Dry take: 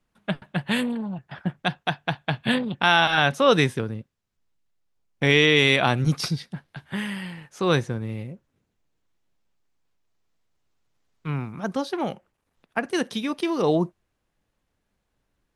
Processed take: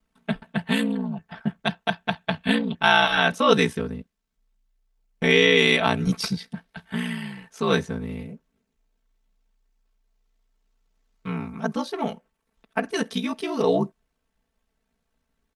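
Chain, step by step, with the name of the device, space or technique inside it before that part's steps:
ring-modulated robot voice (ring modulation 30 Hz; comb filter 4.5 ms, depth 98%)

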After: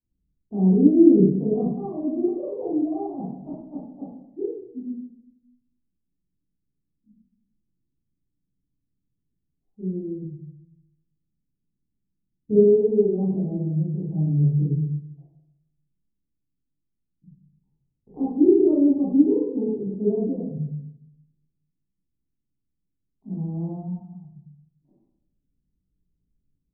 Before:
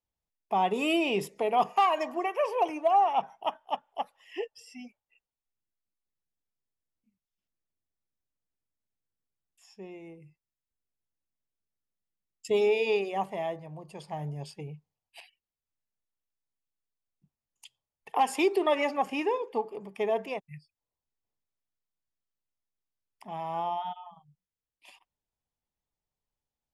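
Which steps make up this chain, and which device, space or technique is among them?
next room (low-pass filter 290 Hz 24 dB per octave; convolution reverb RT60 0.80 s, pre-delay 15 ms, DRR −10 dB)
level +8 dB

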